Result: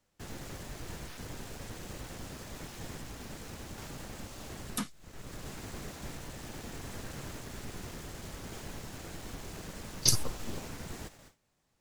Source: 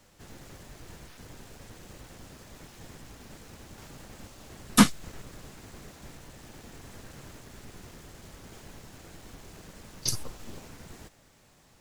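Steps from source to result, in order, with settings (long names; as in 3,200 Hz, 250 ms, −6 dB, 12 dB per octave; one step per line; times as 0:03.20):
noise gate with hold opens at −48 dBFS
0:03.00–0:05.46: downward compressor 4 to 1, threshold −43 dBFS, peak gain reduction 25.5 dB
level +4.5 dB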